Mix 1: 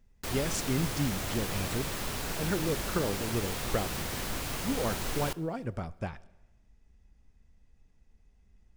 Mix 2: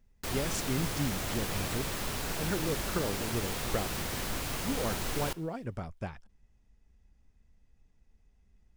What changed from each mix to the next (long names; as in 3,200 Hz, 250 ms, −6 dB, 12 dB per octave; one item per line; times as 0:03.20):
speech: send off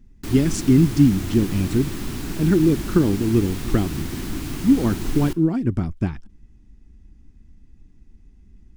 speech +7.5 dB
master: add low shelf with overshoot 410 Hz +8 dB, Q 3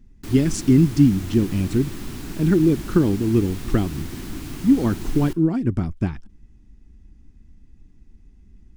background −4.0 dB